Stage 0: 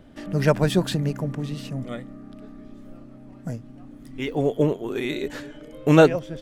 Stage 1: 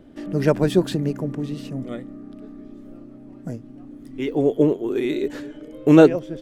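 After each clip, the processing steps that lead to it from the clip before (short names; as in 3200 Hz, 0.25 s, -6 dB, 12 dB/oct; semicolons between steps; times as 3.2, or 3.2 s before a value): bell 340 Hz +9.5 dB 1.1 oct; gain -3 dB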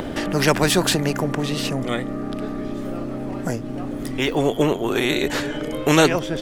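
in parallel at +1 dB: upward compressor, threshold -24 dBFS; on the sum: spectral compressor 2:1; gain -6.5 dB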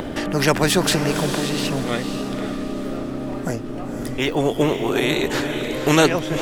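diffused feedback echo 0.514 s, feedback 40%, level -7.5 dB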